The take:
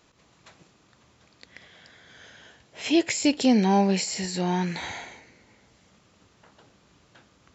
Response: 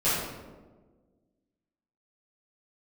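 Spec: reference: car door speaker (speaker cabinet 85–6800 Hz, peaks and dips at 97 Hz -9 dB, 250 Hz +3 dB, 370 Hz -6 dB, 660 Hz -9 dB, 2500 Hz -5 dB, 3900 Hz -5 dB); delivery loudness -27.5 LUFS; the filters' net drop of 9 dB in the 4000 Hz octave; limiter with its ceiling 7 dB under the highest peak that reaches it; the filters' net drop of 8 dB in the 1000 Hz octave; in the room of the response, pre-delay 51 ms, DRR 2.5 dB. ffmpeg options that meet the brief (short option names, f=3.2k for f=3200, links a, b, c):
-filter_complex "[0:a]equalizer=f=1k:t=o:g=-6.5,equalizer=f=4k:t=o:g=-8.5,alimiter=limit=-18.5dB:level=0:latency=1,asplit=2[a][b];[1:a]atrim=start_sample=2205,adelay=51[c];[b][c]afir=irnorm=-1:irlink=0,volume=-15.5dB[d];[a][d]amix=inputs=2:normalize=0,highpass=85,equalizer=f=97:t=q:w=4:g=-9,equalizer=f=250:t=q:w=4:g=3,equalizer=f=370:t=q:w=4:g=-6,equalizer=f=660:t=q:w=4:g=-9,equalizer=f=2.5k:t=q:w=4:g=-5,equalizer=f=3.9k:t=q:w=4:g=-5,lowpass=f=6.8k:w=0.5412,lowpass=f=6.8k:w=1.3066,volume=-0.5dB"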